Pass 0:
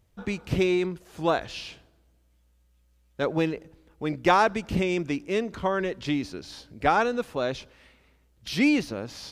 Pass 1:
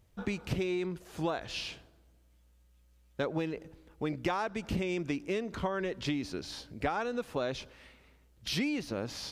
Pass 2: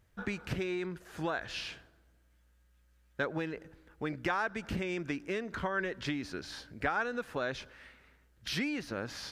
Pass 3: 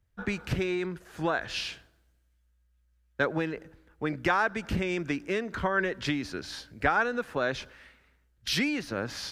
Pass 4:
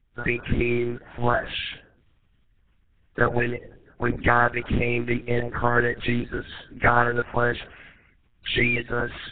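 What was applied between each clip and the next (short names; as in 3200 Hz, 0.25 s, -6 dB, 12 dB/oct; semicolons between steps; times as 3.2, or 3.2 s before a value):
compressor 10:1, threshold -29 dBFS, peak gain reduction 14 dB
bell 1600 Hz +10.5 dB 0.69 oct; gain -3 dB
three-band expander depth 40%; gain +5.5 dB
bin magnitudes rounded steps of 30 dB; monotone LPC vocoder at 8 kHz 120 Hz; gain +7.5 dB; Nellymoser 16 kbps 8000 Hz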